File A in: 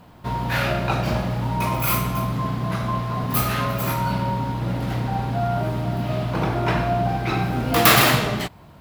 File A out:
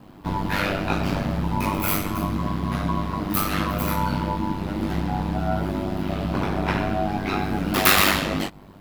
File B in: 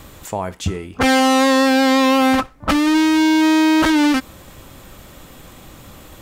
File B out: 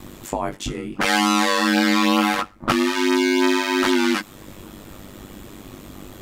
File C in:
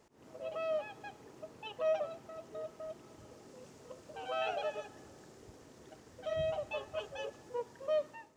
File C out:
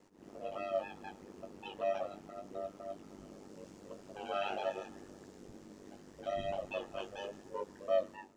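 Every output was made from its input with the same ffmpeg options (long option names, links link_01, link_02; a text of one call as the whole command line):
ffmpeg -i in.wav -filter_complex "[0:a]equalizer=frequency=270:width_type=o:width=0.63:gain=10,acrossover=split=770[link_01][link_02];[link_01]acompressor=threshold=-21dB:ratio=6[link_03];[link_03][link_02]amix=inputs=2:normalize=0,flanger=delay=16:depth=3.6:speed=0.76,aeval=exprs='val(0)*sin(2*PI*49*n/s)':channel_layout=same,volume=4.5dB" out.wav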